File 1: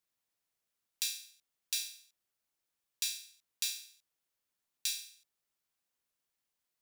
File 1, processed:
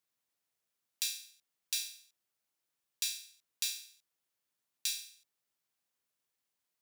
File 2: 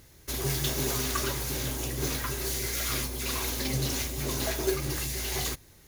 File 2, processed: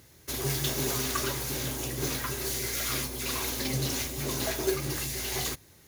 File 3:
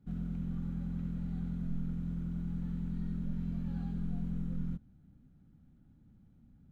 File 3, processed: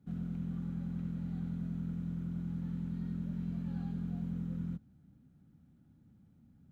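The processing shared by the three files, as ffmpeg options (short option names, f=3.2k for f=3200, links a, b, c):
-af "highpass=76"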